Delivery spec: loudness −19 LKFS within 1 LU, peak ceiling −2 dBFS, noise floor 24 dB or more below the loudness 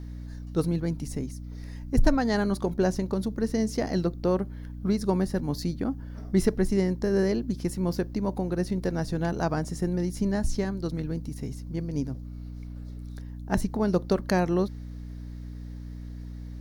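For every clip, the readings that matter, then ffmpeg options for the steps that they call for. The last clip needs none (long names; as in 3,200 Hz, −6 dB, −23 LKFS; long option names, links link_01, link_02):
mains hum 60 Hz; hum harmonics up to 300 Hz; level of the hum −36 dBFS; integrated loudness −28.0 LKFS; sample peak −10.5 dBFS; target loudness −19.0 LKFS
→ -af "bandreject=frequency=60:width_type=h:width=6,bandreject=frequency=120:width_type=h:width=6,bandreject=frequency=180:width_type=h:width=6,bandreject=frequency=240:width_type=h:width=6,bandreject=frequency=300:width_type=h:width=6"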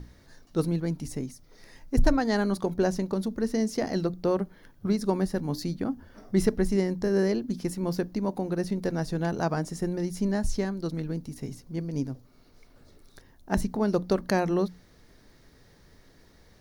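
mains hum none found; integrated loudness −29.0 LKFS; sample peak −10.5 dBFS; target loudness −19.0 LKFS
→ -af "volume=10dB,alimiter=limit=-2dB:level=0:latency=1"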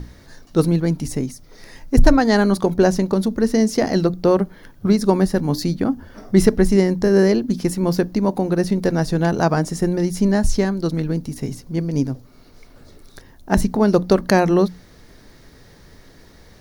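integrated loudness −19.0 LKFS; sample peak −2.0 dBFS; background noise floor −48 dBFS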